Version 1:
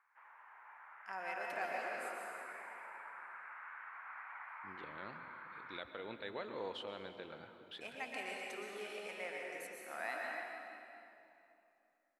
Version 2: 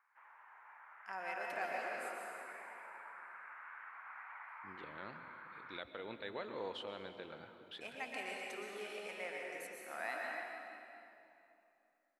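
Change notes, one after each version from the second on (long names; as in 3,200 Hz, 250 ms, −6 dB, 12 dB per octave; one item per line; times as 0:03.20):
background: send −9.5 dB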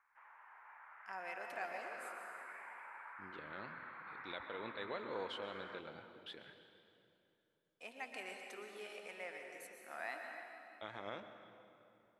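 first voice: send −6.5 dB
second voice: entry −1.45 s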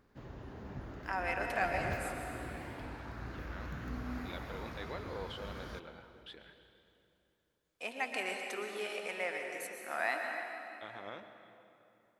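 first voice +10.5 dB
background: remove Chebyshev band-pass filter 890–2,300 Hz, order 3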